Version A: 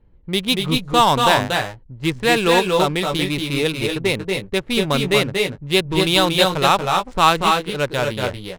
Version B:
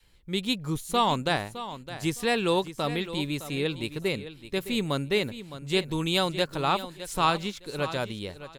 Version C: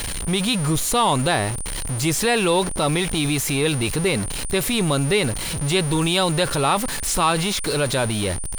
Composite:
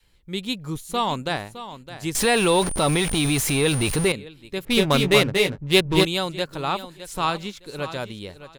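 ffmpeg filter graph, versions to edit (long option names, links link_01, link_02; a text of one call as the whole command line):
ffmpeg -i take0.wav -i take1.wav -i take2.wav -filter_complex "[1:a]asplit=3[link_01][link_02][link_03];[link_01]atrim=end=2.152[link_04];[2:a]atrim=start=2.148:end=4.122[link_05];[link_02]atrim=start=4.118:end=4.652[link_06];[0:a]atrim=start=4.648:end=6.052[link_07];[link_03]atrim=start=6.048[link_08];[link_04][link_05]acrossfade=duration=0.004:curve1=hsin:curve2=hsin[link_09];[link_09][link_06]acrossfade=duration=0.004:curve1=hsin:curve2=hsin[link_10];[link_10][link_07]acrossfade=duration=0.004:curve1=hsin:curve2=hsin[link_11];[link_11][link_08]acrossfade=duration=0.004:curve1=hsin:curve2=hsin" out.wav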